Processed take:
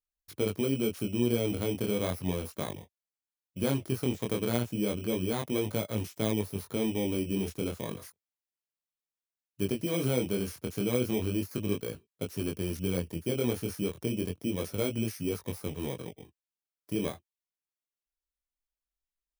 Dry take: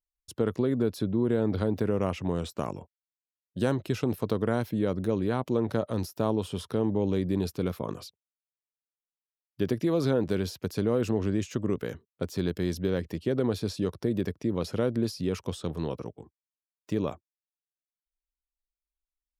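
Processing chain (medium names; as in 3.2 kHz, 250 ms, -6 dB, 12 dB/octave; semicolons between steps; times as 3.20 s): bit-reversed sample order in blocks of 16 samples; chorus 0.33 Hz, delay 18.5 ms, depth 6.9 ms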